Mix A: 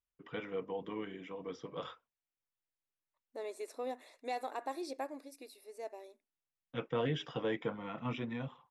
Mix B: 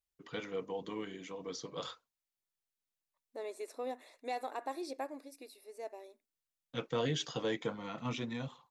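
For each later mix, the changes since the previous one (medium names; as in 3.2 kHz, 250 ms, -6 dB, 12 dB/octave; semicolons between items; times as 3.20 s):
first voice: remove Savitzky-Golay filter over 25 samples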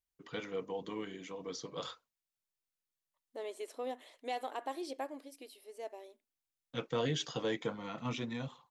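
second voice: remove Butterworth band-stop 3.1 kHz, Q 4.7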